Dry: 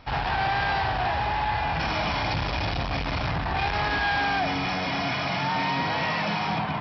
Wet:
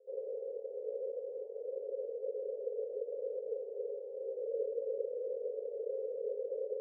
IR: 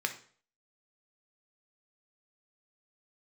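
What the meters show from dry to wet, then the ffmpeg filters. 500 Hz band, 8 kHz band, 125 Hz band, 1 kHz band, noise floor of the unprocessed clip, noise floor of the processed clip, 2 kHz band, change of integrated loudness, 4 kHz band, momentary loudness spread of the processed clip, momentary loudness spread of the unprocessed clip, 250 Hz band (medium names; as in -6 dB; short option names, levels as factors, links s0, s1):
-1.5 dB, no reading, under -40 dB, under -40 dB, -29 dBFS, -46 dBFS, under -40 dB, -14.0 dB, under -40 dB, 4 LU, 4 LU, under -30 dB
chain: -af "aeval=exprs='abs(val(0))':c=same,asuperpass=centerf=480:order=8:qfactor=4,volume=2.51"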